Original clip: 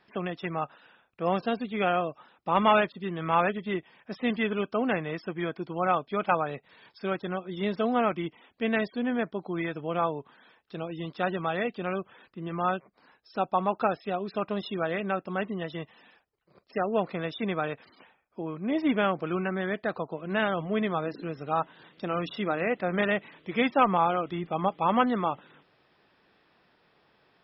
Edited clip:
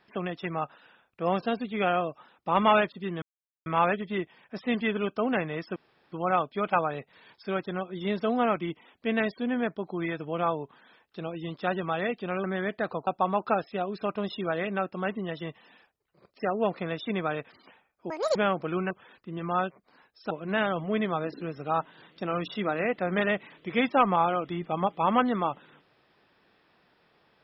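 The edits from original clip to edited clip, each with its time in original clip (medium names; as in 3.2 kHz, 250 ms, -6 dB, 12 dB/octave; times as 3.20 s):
3.22 s: insert silence 0.44 s
5.32–5.68 s: room tone
12.00–13.40 s: swap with 19.49–20.12 s
18.43–18.94 s: speed 200%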